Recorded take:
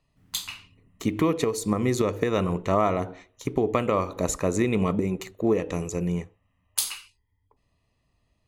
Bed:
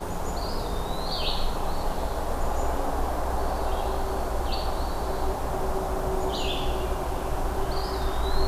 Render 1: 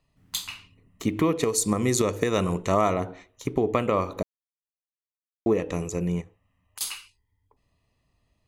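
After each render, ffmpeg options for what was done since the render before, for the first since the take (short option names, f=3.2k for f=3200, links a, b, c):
-filter_complex "[0:a]asettb=1/sr,asplit=3[a][b][c];[a]atrim=end=1.434[d];[b]atrim=start=1.43:end=2.94,asetpts=PTS-STARTPTS,afade=t=in:d=0.004:c=qsin,afade=t=out:st=1.506:d=0.004:c=qsin,equalizer=f=8.3k:t=o:w=1.7:g=10[e];[c]atrim=start=2.936[f];[d][e]acrossfade=d=0.004:c1=hsin:c2=qsin[g];[g][f]acrossfade=d=0.004:c1=qsin:c2=hsin,asettb=1/sr,asplit=3[h][i][j];[h]atrim=end=6.214[k];[i]atrim=start=6.21:end=6.81,asetpts=PTS-STARTPTS,afade=t=in:d=0.004:c=qsin,afade=t=out:st=0.596:d=0.004:c=qsin,acompressor=threshold=-40dB:ratio=6:attack=3.2:release=140:knee=1:detection=peak[l];[j]atrim=start=6.806[m];[k][l]acrossfade=d=0.004:c1=hsin:c2=qsin[n];[n][m]acrossfade=d=0.004:c1=qsin:c2=hsin,asplit=3[o][p][q];[o]atrim=end=4.23,asetpts=PTS-STARTPTS,afade=t=out:st=4.226:d=0.004:c=hsin[r];[p]atrim=start=4.23:end=5.46,asetpts=PTS-STARTPTS,volume=0[s];[q]atrim=start=5.46,asetpts=PTS-STARTPTS,afade=t=in:d=0.004:c=hsin[t];[r][s][t]concat=n=3:v=0:a=1"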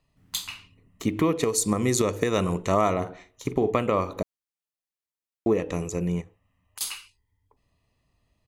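-filter_complex "[0:a]asplit=3[a][b][c];[a]afade=t=out:st=3.01:d=0.02[d];[b]asplit=2[e][f];[f]adelay=46,volume=-11dB[g];[e][g]amix=inputs=2:normalize=0,afade=t=in:st=3.01:d=0.02,afade=t=out:st=3.77:d=0.02[h];[c]afade=t=in:st=3.77:d=0.02[i];[d][h][i]amix=inputs=3:normalize=0"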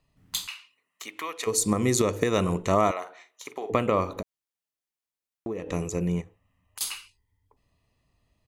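-filter_complex "[0:a]asplit=3[a][b][c];[a]afade=t=out:st=0.46:d=0.02[d];[b]highpass=1.1k,afade=t=in:st=0.46:d=0.02,afade=t=out:st=1.46:d=0.02[e];[c]afade=t=in:st=1.46:d=0.02[f];[d][e][f]amix=inputs=3:normalize=0,asettb=1/sr,asplit=3[g][h][i];[g]atrim=end=2.914[j];[h]atrim=start=2.91:end=3.7,asetpts=PTS-STARTPTS,afade=t=in:d=0.004:c=qsin,afade=t=out:st=0.786:d=0.004:c=qsin,highpass=810[k];[i]atrim=start=3.696[l];[j][k]acrossfade=d=0.004:c1=hsin:c2=qsin[m];[m][l]acrossfade=d=0.004:c1=qsin:c2=hsin,asettb=1/sr,asplit=3[n][o][p];[n]atrim=end=4.204[q];[o]atrim=start=4.2:end=5.71,asetpts=PTS-STARTPTS,afade=t=in:d=0.004:c=qsin,afade=t=out:st=1.506:d=0.004:c=qsin,acompressor=threshold=-32dB:ratio=3:attack=3.2:release=140:knee=1:detection=peak[r];[p]atrim=start=5.706[s];[q][r]acrossfade=d=0.004:c1=hsin:c2=qsin[t];[t][s]acrossfade=d=0.004:c1=qsin:c2=hsin"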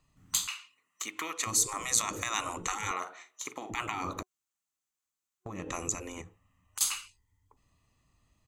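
-af "afftfilt=real='re*lt(hypot(re,im),0.126)':imag='im*lt(hypot(re,im),0.126)':win_size=1024:overlap=0.75,superequalizer=7b=0.631:8b=0.631:10b=1.58:15b=2.24"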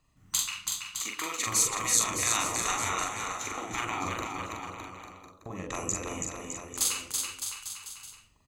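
-filter_complex "[0:a]asplit=2[a][b];[b]adelay=43,volume=-3dB[c];[a][c]amix=inputs=2:normalize=0,aecho=1:1:330|610.5|848.9|1052|1224:0.631|0.398|0.251|0.158|0.1"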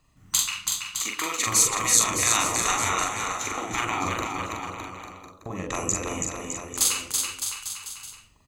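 -af "volume=5.5dB"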